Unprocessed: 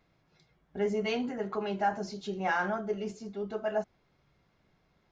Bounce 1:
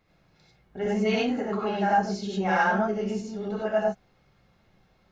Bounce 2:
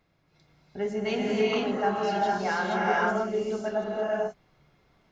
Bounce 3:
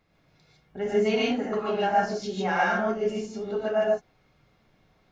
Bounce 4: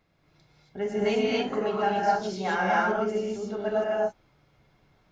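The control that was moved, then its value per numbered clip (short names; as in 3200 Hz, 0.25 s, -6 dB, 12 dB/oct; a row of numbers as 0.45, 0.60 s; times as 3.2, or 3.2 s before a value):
non-linear reverb, gate: 0.12, 0.51, 0.18, 0.3 s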